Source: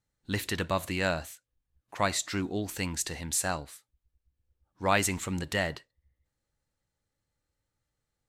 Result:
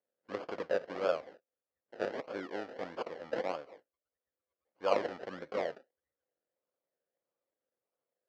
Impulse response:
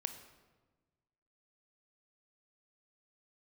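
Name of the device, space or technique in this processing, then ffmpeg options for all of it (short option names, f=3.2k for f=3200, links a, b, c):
circuit-bent sampling toy: -af "acrusher=samples=32:mix=1:aa=0.000001:lfo=1:lforange=19.2:lforate=1.6,highpass=420,equalizer=f=520:t=q:w=4:g=9,equalizer=f=910:t=q:w=4:g=-5,equalizer=f=2.6k:t=q:w=4:g=-6,equalizer=f=3.7k:t=q:w=4:g=-9,lowpass=f=4.2k:w=0.5412,lowpass=f=4.2k:w=1.3066,volume=-4dB"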